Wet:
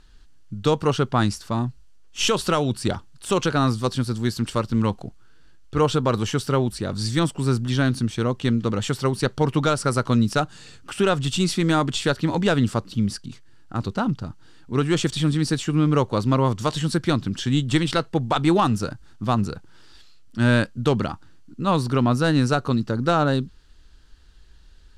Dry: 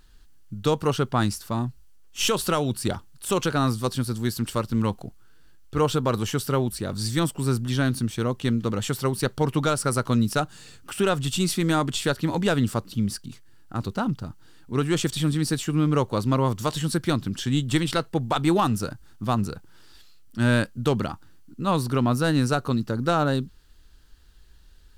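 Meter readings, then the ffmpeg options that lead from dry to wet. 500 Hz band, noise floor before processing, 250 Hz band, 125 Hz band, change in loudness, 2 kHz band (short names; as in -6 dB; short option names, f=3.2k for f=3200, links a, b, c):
+2.5 dB, -50 dBFS, +2.5 dB, +2.5 dB, +2.5 dB, +2.5 dB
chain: -af "lowpass=7.5k,volume=2.5dB"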